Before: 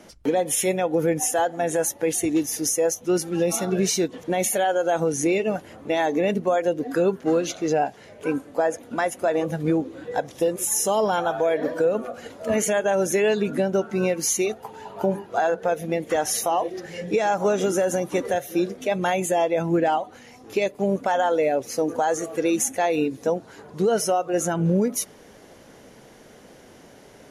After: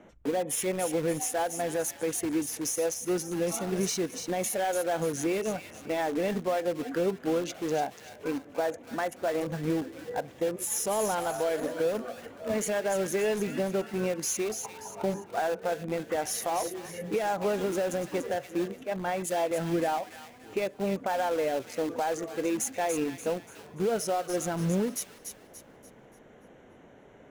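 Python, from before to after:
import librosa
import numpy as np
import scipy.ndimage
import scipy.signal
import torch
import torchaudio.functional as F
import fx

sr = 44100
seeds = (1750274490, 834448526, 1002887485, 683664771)

p1 = fx.wiener(x, sr, points=9)
p2 = (np.mod(10.0 ** (22.0 / 20.0) * p1 + 1.0, 2.0) - 1.0) / 10.0 ** (22.0 / 20.0)
p3 = p1 + (p2 * librosa.db_to_amplitude(-11.5))
p4 = fx.echo_wet_highpass(p3, sr, ms=290, feedback_pct=39, hz=1800.0, wet_db=-6.5)
p5 = fx.band_widen(p4, sr, depth_pct=100, at=(18.83, 19.51))
y = p5 * librosa.db_to_amplitude(-7.0)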